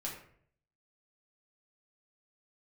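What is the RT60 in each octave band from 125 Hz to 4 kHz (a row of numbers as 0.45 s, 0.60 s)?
0.80 s, 0.70 s, 0.65 s, 0.55 s, 0.55 s, 0.35 s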